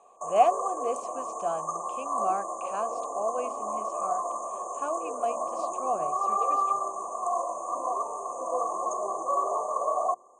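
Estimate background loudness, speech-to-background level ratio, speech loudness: -31.0 LUFS, -0.5 dB, -31.5 LUFS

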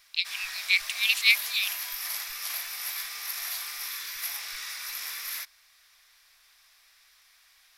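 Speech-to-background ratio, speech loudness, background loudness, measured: 8.5 dB, -24.5 LUFS, -33.0 LUFS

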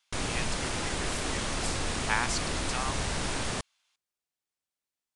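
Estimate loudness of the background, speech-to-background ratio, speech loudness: -32.0 LUFS, -4.5 dB, -36.5 LUFS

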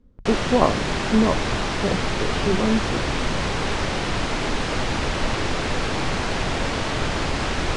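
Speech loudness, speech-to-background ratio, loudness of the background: -24.0 LUFS, 0.5 dB, -24.5 LUFS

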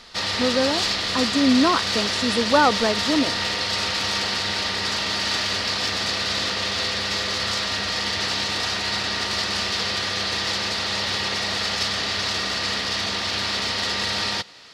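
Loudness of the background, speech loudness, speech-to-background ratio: -22.5 LUFS, -22.5 LUFS, 0.0 dB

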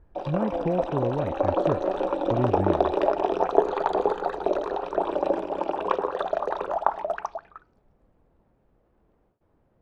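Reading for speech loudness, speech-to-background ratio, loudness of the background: -30.5 LUFS, -4.0 dB, -26.5 LUFS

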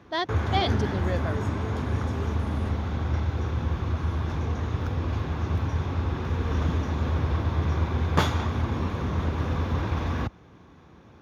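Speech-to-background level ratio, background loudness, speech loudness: -2.5 dB, -28.0 LUFS, -30.5 LUFS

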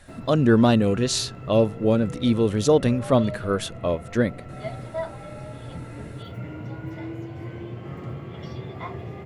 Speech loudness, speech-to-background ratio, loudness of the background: -22.0 LUFS, 14.5 dB, -36.5 LUFS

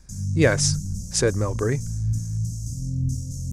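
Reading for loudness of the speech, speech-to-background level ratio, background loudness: -23.5 LUFS, 5.0 dB, -28.5 LUFS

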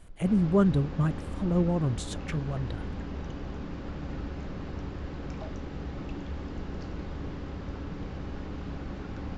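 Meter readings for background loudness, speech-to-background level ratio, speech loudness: -38.5 LUFS, 10.5 dB, -28.0 LUFS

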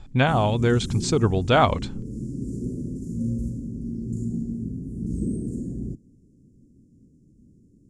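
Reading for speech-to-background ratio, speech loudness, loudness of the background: 9.5 dB, -21.5 LUFS, -31.0 LUFS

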